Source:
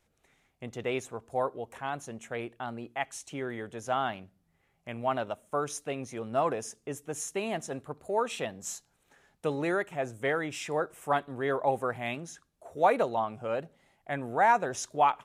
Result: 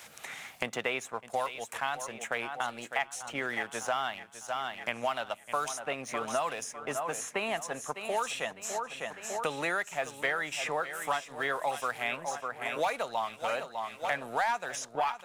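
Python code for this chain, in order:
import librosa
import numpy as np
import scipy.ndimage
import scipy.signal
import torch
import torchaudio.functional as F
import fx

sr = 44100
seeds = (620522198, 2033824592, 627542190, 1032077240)

p1 = scipy.signal.sosfilt(scipy.signal.butter(2, 270.0, 'highpass', fs=sr, output='sos'), x)
p2 = fx.peak_eq(p1, sr, hz=350.0, db=-14.5, octaves=1.6)
p3 = fx.leveller(p2, sr, passes=1)
p4 = p3 + fx.echo_feedback(p3, sr, ms=603, feedback_pct=43, wet_db=-13.0, dry=0)
y = fx.band_squash(p4, sr, depth_pct=100)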